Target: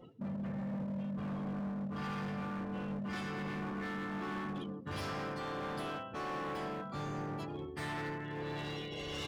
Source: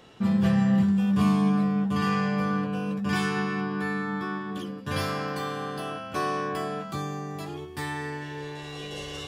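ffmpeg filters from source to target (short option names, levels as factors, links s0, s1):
-filter_complex "[0:a]tremolo=f=1.4:d=0.52,areverse,acompressor=threshold=0.02:ratio=6,areverse,asplit=3[s0][s1][s2];[s1]asetrate=33038,aresample=44100,atempo=1.33484,volume=0.398[s3];[s2]asetrate=52444,aresample=44100,atempo=0.840896,volume=0.316[s4];[s0][s3][s4]amix=inputs=3:normalize=0,afftdn=nr=27:nf=-49,volume=63.1,asoftclip=hard,volume=0.0158,asplit=2[s5][s6];[s6]adelay=125,lowpass=f=1200:p=1,volume=0.0891,asplit=2[s7][s8];[s8]adelay=125,lowpass=f=1200:p=1,volume=0.49,asplit=2[s9][s10];[s10]adelay=125,lowpass=f=1200:p=1,volume=0.49,asplit=2[s11][s12];[s12]adelay=125,lowpass=f=1200:p=1,volume=0.49[s13];[s7][s9][s11][s13]amix=inputs=4:normalize=0[s14];[s5][s14]amix=inputs=2:normalize=0"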